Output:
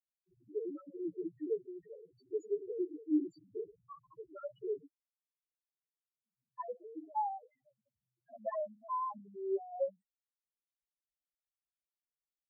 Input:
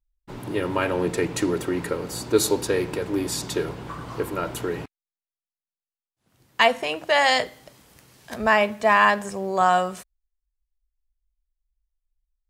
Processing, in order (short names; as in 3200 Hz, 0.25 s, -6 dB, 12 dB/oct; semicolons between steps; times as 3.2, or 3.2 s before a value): cycle switcher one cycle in 3, muted; loudest bins only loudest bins 1; vowel sweep a-u 0.49 Hz; gain +6 dB